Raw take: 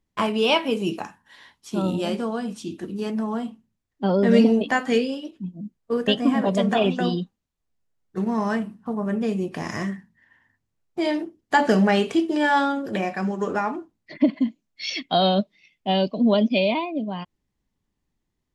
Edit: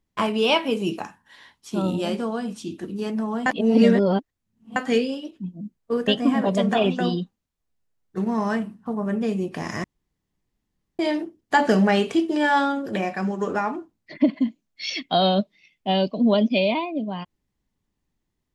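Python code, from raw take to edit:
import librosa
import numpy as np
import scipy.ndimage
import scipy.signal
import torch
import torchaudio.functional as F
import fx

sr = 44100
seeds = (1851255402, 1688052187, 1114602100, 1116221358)

y = fx.edit(x, sr, fx.reverse_span(start_s=3.46, length_s=1.3),
    fx.room_tone_fill(start_s=9.84, length_s=1.15), tone=tone)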